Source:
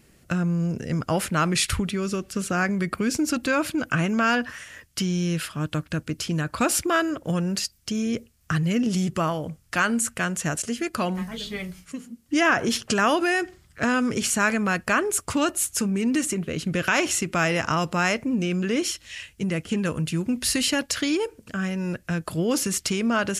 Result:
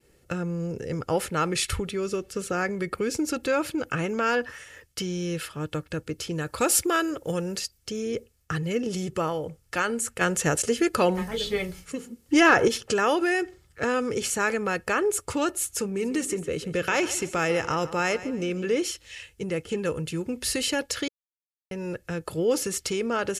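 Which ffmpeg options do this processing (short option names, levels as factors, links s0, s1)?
-filter_complex "[0:a]asettb=1/sr,asplit=3[s0][s1][s2];[s0]atrim=end=6.414[s3];[s1]atrim=start=6.41:end=7.57,asetpts=PTS-STARTPTS,afade=t=in:d=0.004:c=qsin,afade=t=out:st=1.156:d=0.004:c=qsin,highshelf=f=5000:g=8.5[s4];[s2]atrim=start=7.566[s5];[s3][s4]acrossfade=d=0.004:c1=hsin:c2=qsin[s6];[s6][s5]acrossfade=d=0.004:c1=qsin:c2=hsin,asettb=1/sr,asplit=3[s7][s8][s9];[s7]atrim=end=10.214[s10];[s8]atrim=start=10.21:end=12.68,asetpts=PTS-STARTPTS,afade=t=in:d=0.004:c=qsin,afade=t=out:st=2.466:d=0.004:c=qsin,acontrast=70[s11];[s9]atrim=start=12.676[s12];[s10][s11]acrossfade=d=0.004:c1=hsin:c2=qsin[s13];[s13][s12]acrossfade=d=0.004:c1=qsin:c2=hsin,asplit=3[s14][s15][s16];[s14]afade=t=out:st=15.97:d=0.02[s17];[s15]aecho=1:1:145|290|435:0.168|0.0588|0.0206,afade=t=in:st=15.97:d=0.02,afade=t=out:st=18.74:d=0.02[s18];[s16]afade=t=in:st=18.74:d=0.02[s19];[s17][s18][s19]amix=inputs=3:normalize=0,asplit=3[s20][s21][s22];[s20]atrim=end=21.08,asetpts=PTS-STARTPTS,afade=t=out:st=21.076:d=0.004:c=hsin[s23];[s21]atrim=start=21.08:end=21.71,asetpts=PTS-STARTPTS,volume=0[s24];[s22]atrim=start=21.71,asetpts=PTS-STARTPTS,afade=t=in:d=0.004:c=hsin[s25];[s23][s24][s25]concat=n=3:v=0:a=1,agate=range=0.0224:threshold=0.002:ratio=3:detection=peak,equalizer=f=490:t=o:w=0.8:g=6.5,aecho=1:1:2.3:0.41,volume=0.596"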